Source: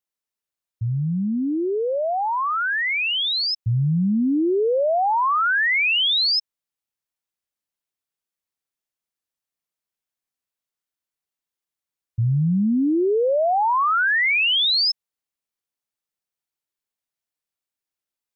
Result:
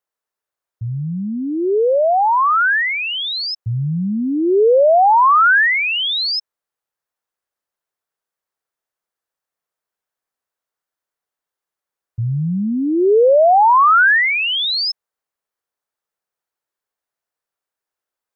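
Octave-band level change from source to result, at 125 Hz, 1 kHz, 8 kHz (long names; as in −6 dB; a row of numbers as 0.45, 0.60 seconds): 0.0 dB, +8.5 dB, can't be measured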